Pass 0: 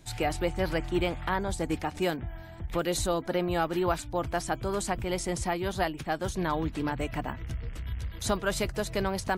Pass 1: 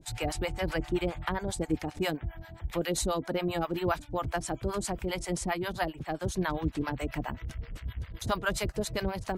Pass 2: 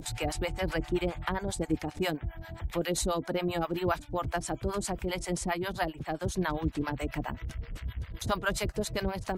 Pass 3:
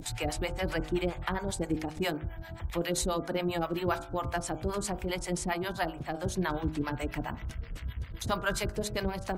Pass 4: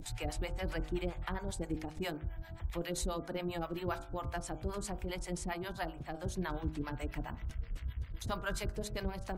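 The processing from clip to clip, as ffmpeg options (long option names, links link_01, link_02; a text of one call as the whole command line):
ffmpeg -i in.wav -filter_complex "[0:a]acrossover=split=590[link_01][link_02];[link_01]aeval=exprs='val(0)*(1-1/2+1/2*cos(2*PI*7.5*n/s))':channel_layout=same[link_03];[link_02]aeval=exprs='val(0)*(1-1/2-1/2*cos(2*PI*7.5*n/s))':channel_layout=same[link_04];[link_03][link_04]amix=inputs=2:normalize=0,volume=3dB" out.wav
ffmpeg -i in.wav -af "acompressor=mode=upward:threshold=-33dB:ratio=2.5" out.wav
ffmpeg -i in.wav -af "bandreject=frequency=52.19:width_type=h:width=4,bandreject=frequency=104.38:width_type=h:width=4,bandreject=frequency=156.57:width_type=h:width=4,bandreject=frequency=208.76:width_type=h:width=4,bandreject=frequency=260.95:width_type=h:width=4,bandreject=frequency=313.14:width_type=h:width=4,bandreject=frequency=365.33:width_type=h:width=4,bandreject=frequency=417.52:width_type=h:width=4,bandreject=frequency=469.71:width_type=h:width=4,bandreject=frequency=521.9:width_type=h:width=4,bandreject=frequency=574.09:width_type=h:width=4,bandreject=frequency=626.28:width_type=h:width=4,bandreject=frequency=678.47:width_type=h:width=4,bandreject=frequency=730.66:width_type=h:width=4,bandreject=frequency=782.85:width_type=h:width=4,bandreject=frequency=835.04:width_type=h:width=4,bandreject=frequency=887.23:width_type=h:width=4,bandreject=frequency=939.42:width_type=h:width=4,bandreject=frequency=991.61:width_type=h:width=4,bandreject=frequency=1043.8:width_type=h:width=4,bandreject=frequency=1095.99:width_type=h:width=4,bandreject=frequency=1148.18:width_type=h:width=4,bandreject=frequency=1200.37:width_type=h:width=4,bandreject=frequency=1252.56:width_type=h:width=4,bandreject=frequency=1304.75:width_type=h:width=4,bandreject=frequency=1356.94:width_type=h:width=4,bandreject=frequency=1409.13:width_type=h:width=4,bandreject=frequency=1461.32:width_type=h:width=4,bandreject=frequency=1513.51:width_type=h:width=4,bandreject=frequency=1565.7:width_type=h:width=4,bandreject=frequency=1617.89:width_type=h:width=4" out.wav
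ffmpeg -i in.wav -af "lowshelf=frequency=63:gain=10.5,volume=-7.5dB" out.wav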